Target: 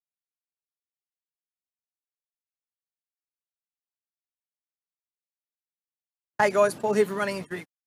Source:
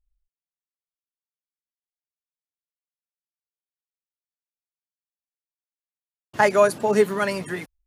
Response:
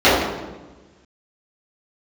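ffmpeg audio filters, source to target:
-af "agate=range=-55dB:threshold=-31dB:ratio=16:detection=peak,volume=-4dB"

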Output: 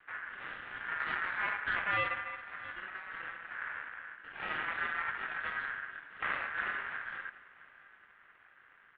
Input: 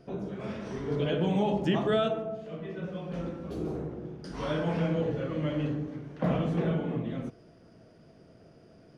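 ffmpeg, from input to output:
ffmpeg -i in.wav -filter_complex "[0:a]highpass=frequency=54:width=0.5412,highpass=frequency=54:width=1.3066,aeval=exprs='max(val(0),0)':channel_layout=same,asplit=2[link_01][link_02];[link_02]aecho=0:1:670|1340|2010:0.0944|0.0415|0.0183[link_03];[link_01][link_03]amix=inputs=2:normalize=0,highpass=frequency=230:width_type=q:width=0.5412,highpass=frequency=230:width_type=q:width=1.307,lowpass=frequency=2100:width_type=q:width=0.5176,lowpass=frequency=2100:width_type=q:width=0.7071,lowpass=frequency=2100:width_type=q:width=1.932,afreqshift=-250,aeval=exprs='val(0)*sin(2*PI*1600*n/s)':channel_layout=same,volume=2.5dB" out.wav

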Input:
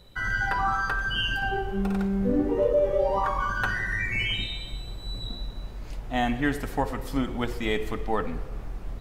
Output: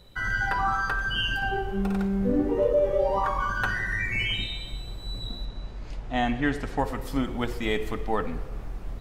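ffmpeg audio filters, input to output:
ffmpeg -i in.wav -filter_complex "[0:a]asettb=1/sr,asplit=3[link_01][link_02][link_03];[link_01]atrim=end=5.454[link_04];[link_02]atrim=start=5.45:end=6.79,asetpts=PTS-STARTPTS,afade=type=in:duration=0.004:curve=qsin,afade=type=out:start_time=1.336:duration=0.004:curve=qsin,lowpass=6600[link_05];[link_03]atrim=start=6.786[link_06];[link_04][link_05]acrossfade=duration=0.004:curve1=hsin:curve2=qsin[link_07];[link_07][link_06]acrossfade=duration=0.004:curve1=qsin:curve2=hsin" out.wav

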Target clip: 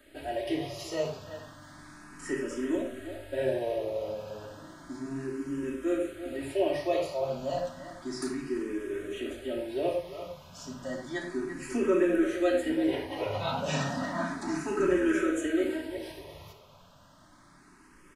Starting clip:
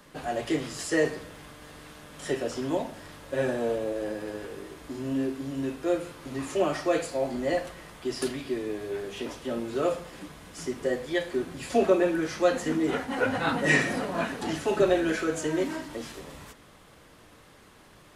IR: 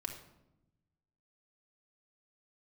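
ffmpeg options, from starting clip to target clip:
-filter_complex "[0:a]asplit=2[link_01][link_02];[link_02]adelay=340,highpass=300,lowpass=3400,asoftclip=type=hard:threshold=-18dB,volume=-10dB[link_03];[link_01][link_03]amix=inputs=2:normalize=0[link_04];[1:a]atrim=start_sample=2205,afade=type=out:start_time=0.16:duration=0.01,atrim=end_sample=7497[link_05];[link_04][link_05]afir=irnorm=-1:irlink=0,asplit=2[link_06][link_07];[link_07]afreqshift=0.32[link_08];[link_06][link_08]amix=inputs=2:normalize=1"

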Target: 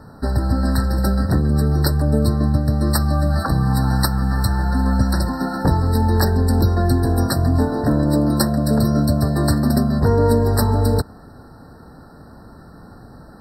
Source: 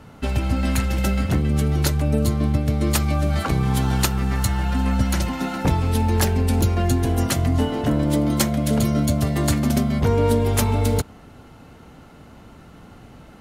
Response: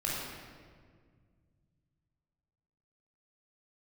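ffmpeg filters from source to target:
-filter_complex "[0:a]asettb=1/sr,asplit=3[link_01][link_02][link_03];[link_01]atrim=end=2.424[link_04];[link_02]atrim=start=2.42:end=4.37,asetpts=PTS-STARTPTS,afade=type=in:duration=0.004:curve=qsin,afade=type=out:start_time=1.946:duration=0.004:curve=qsin,equalizer=frequency=400:width=7.3:gain=-15[link_05];[link_03]atrim=start=4.366[link_06];[link_04][link_05]acrossfade=duration=0.004:curve1=hsin:curve2=qsin[link_07];[link_07][link_06]acrossfade=duration=0.004:curve1=qsin:curve2=hsin,afftfilt=real='re*eq(mod(floor(b*sr/1024/1900),2),0)':imag='im*eq(mod(floor(b*sr/1024/1900),2),0)':win_size=1024:overlap=0.75,volume=3dB"

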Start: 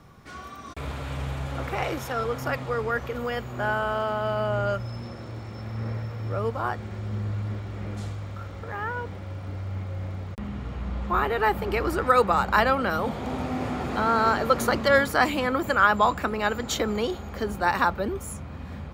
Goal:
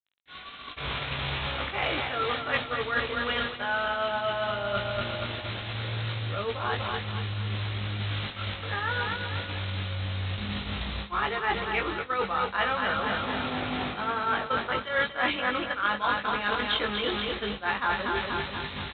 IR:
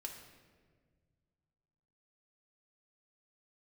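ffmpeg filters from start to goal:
-filter_complex "[0:a]aresample=8000,acrusher=bits=6:mix=0:aa=0.000001,aresample=44100,asplit=2[link_01][link_02];[link_02]adelay=20,volume=-4dB[link_03];[link_01][link_03]amix=inputs=2:normalize=0,aecho=1:1:241|482|723|964|1205|1446:0.473|0.246|0.128|0.0665|0.0346|0.018,areverse,acompressor=threshold=-28dB:ratio=10,areverse,agate=range=-33dB:threshold=-29dB:ratio=3:detection=peak,crystalizer=i=9:c=0"

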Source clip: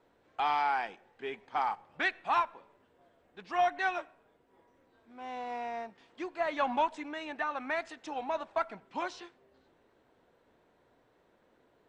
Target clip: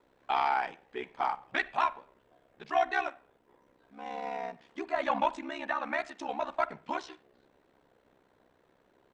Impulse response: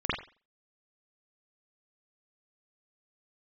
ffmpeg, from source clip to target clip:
-filter_complex "[0:a]aeval=exprs='val(0)*sin(2*PI*33*n/s)':channel_layout=same,atempo=1.3,asplit=2[link_01][link_02];[1:a]atrim=start_sample=2205[link_03];[link_02][link_03]afir=irnorm=-1:irlink=0,volume=-29dB[link_04];[link_01][link_04]amix=inputs=2:normalize=0,volume=4dB"

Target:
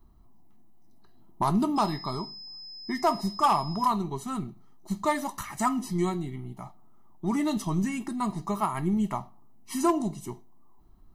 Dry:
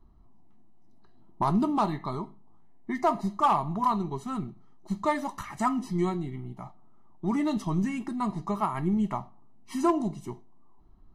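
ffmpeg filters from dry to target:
ffmpeg -i in.wav -filter_complex "[0:a]aemphasis=mode=production:type=50kf,asettb=1/sr,asplit=3[link_01][link_02][link_03];[link_01]atrim=end=1.764[link_04];[link_02]atrim=start=1.76:end=3.86,asetpts=PTS-STARTPTS,afade=type=in:duration=0.004:curve=qsin,afade=type=out:start_time=2.096:duration=0.004:curve=qsin,aeval=exprs='val(0)+0.00891*sin(2*PI*5100*n/s)':channel_layout=same[link_05];[link_03]atrim=start=3.856[link_06];[link_04][link_05]acrossfade=duration=0.004:curve1=hsin:curve2=qsin[link_07];[link_07][link_06]acrossfade=duration=0.004:curve1=qsin:curve2=hsin" out.wav

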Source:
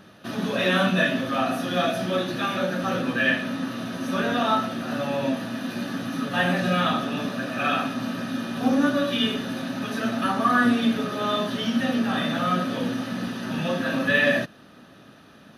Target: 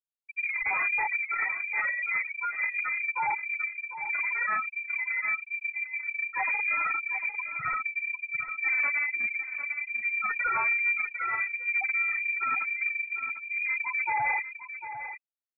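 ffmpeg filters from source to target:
ffmpeg -i in.wav -filter_complex "[0:a]highpass=46,afftfilt=real='re*gte(hypot(re,im),0.282)':imag='im*gte(hypot(re,im),0.282)':win_size=1024:overlap=0.75,asoftclip=type=tanh:threshold=-24dB,asplit=2[link_01][link_02];[link_02]aecho=0:1:750:0.299[link_03];[link_01][link_03]amix=inputs=2:normalize=0,lowpass=frequency=2200:width_type=q:width=0.5098,lowpass=frequency=2200:width_type=q:width=0.6013,lowpass=frequency=2200:width_type=q:width=0.9,lowpass=frequency=2200:width_type=q:width=2.563,afreqshift=-2600" out.wav

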